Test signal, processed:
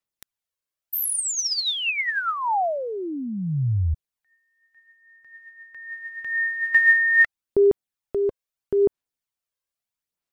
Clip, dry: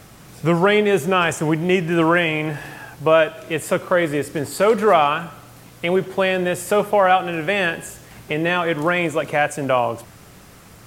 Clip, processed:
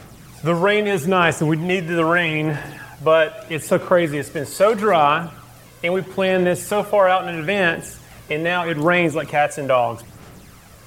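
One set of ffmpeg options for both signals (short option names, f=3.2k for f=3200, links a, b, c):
-af "aphaser=in_gain=1:out_gain=1:delay=1.9:decay=0.44:speed=0.78:type=sinusoidal,volume=-1dB"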